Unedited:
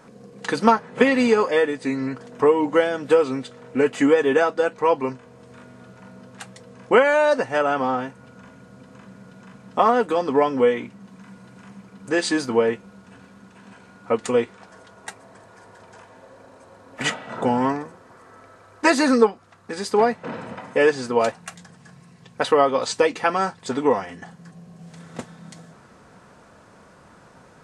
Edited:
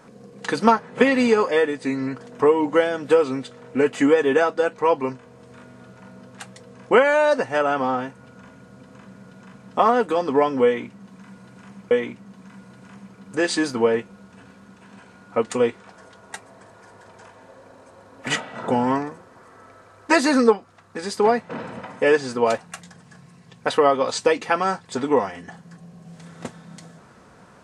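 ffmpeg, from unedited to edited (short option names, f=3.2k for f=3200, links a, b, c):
-filter_complex "[0:a]asplit=2[a][b];[a]atrim=end=11.912[c];[b]atrim=start=10.648[d];[c][d]acrossfade=d=0.004:c1=hsin:c2=hsin"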